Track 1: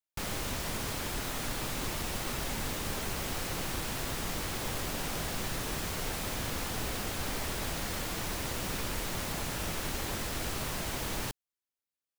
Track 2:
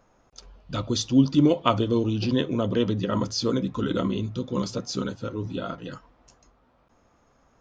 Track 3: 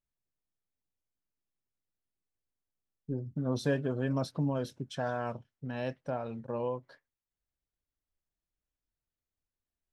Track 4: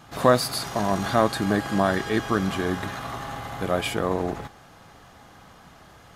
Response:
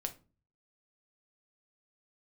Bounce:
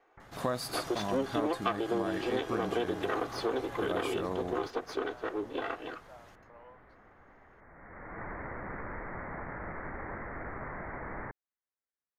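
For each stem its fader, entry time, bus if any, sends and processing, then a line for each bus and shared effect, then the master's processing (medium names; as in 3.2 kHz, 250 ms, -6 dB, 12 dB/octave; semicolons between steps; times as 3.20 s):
0.0 dB, 0.00 s, no send, steep low-pass 2.1 kHz 96 dB/octave; bass shelf 350 Hz -7 dB; auto duck -19 dB, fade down 0.30 s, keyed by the second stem
+0.5 dB, 0.00 s, no send, comb filter that takes the minimum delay 2.6 ms; three-band isolator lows -23 dB, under 300 Hz, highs -20 dB, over 3.2 kHz
-15.0 dB, 0.00 s, no send, high-pass 610 Hz 24 dB/octave
-9.5 dB, 0.20 s, no send, none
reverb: none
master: compression 4:1, threshold -28 dBFS, peak gain reduction 10.5 dB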